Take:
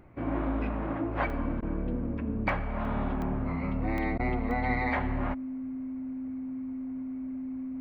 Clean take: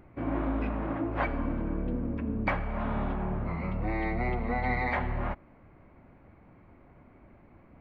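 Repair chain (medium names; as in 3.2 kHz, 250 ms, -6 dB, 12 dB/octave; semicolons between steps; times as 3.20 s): band-stop 260 Hz, Q 30; interpolate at 1.30/2.49/2.85/3.22/3.98/4.51 s, 1.1 ms; interpolate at 1.61/4.18 s, 13 ms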